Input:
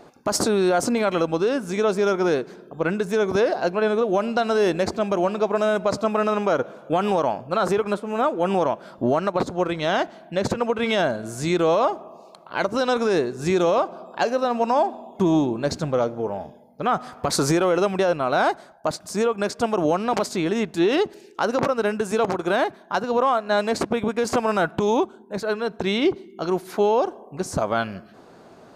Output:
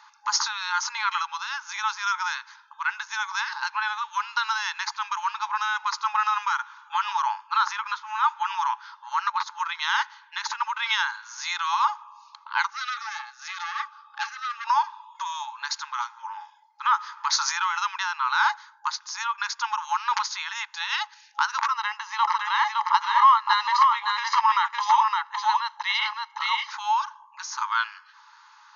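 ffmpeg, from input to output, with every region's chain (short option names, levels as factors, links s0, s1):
-filter_complex "[0:a]asettb=1/sr,asplit=3[s0][s1][s2];[s0]atrim=end=12.704[s3];[s1]atrim=start=12.7:end=14.67,asetpts=PTS-STARTPTS,afade=t=in:d=0.004:c=qsin,afade=t=out:st=1.966:d=0.004:c=qsin,highshelf=f=5900:g=-5.5,aeval=exprs='(tanh(10*val(0)+0.55)-tanh(0.55))/10':c=same,asuperstop=centerf=980:order=12:qfactor=4.9[s4];[s2]atrim=start=14.666[s5];[s3][s4]acrossfade=d=0.004:c1=hsin:c2=qsin[s6];[s6][s5]acrossfade=d=0.004:c1=qsin:c2=hsin,asettb=1/sr,asplit=3[s7][s8][s9];[s7]atrim=end=21.714[s10];[s8]atrim=start=21.71:end=26.71,asetpts=PTS-STARTPTS,afade=t=in:d=0.004:c=qsin,afade=t=out:st=4.996:d=0.004:c=qsin,acrossover=split=4800[s11][s12];[s12]acompressor=threshold=0.002:ratio=4:attack=1:release=60[s13];[s11][s13]amix=inputs=2:normalize=0,aecho=1:1:1:0.74,atrim=end_sample=220500,aecho=1:1:563:0.708,atrim=end_sample=220500[s14];[s9]atrim=start=26.706[s15];[s10][s14]acrossfade=d=0.004:c1=hsin:c2=qsin[s16];[s16][s15]acrossfade=d=0.004:c1=qsin:c2=hsin,afftfilt=real='re*between(b*sr/4096,830,6800)':imag='im*between(b*sr/4096,830,6800)':win_size=4096:overlap=0.75,equalizer=f=2800:t=o:w=0.25:g=-3,bandreject=f=2300:w=20,volume=1.5"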